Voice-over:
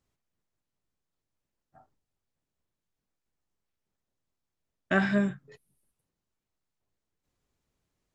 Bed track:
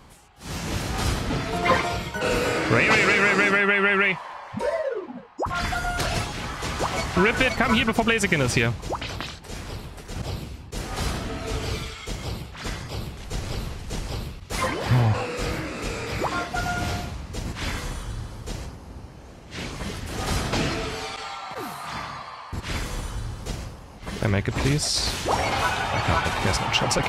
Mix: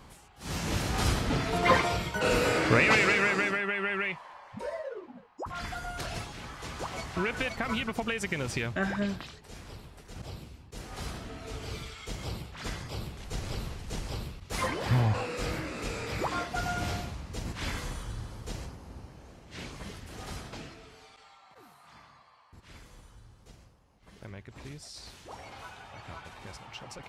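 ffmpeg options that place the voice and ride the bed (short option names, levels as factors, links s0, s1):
-filter_complex "[0:a]adelay=3850,volume=0.531[s0];[1:a]volume=1.41,afade=t=out:st=2.68:d=0.94:silence=0.375837,afade=t=in:st=11.61:d=0.63:silence=0.530884,afade=t=out:st=18.97:d=1.77:silence=0.149624[s1];[s0][s1]amix=inputs=2:normalize=0"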